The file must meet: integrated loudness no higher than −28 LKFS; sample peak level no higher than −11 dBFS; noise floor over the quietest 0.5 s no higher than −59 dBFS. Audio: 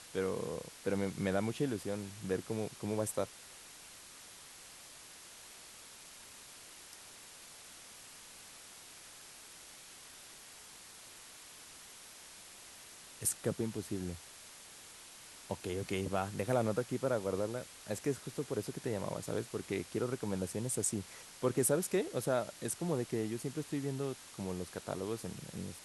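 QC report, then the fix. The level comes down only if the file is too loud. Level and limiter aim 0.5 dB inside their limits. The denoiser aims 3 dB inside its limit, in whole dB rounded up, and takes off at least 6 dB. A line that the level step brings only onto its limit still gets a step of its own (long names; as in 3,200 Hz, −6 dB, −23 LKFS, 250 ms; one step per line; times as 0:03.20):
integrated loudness −37.0 LKFS: in spec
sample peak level −18.5 dBFS: in spec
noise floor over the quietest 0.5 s −54 dBFS: out of spec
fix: broadband denoise 8 dB, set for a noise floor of −54 dBFS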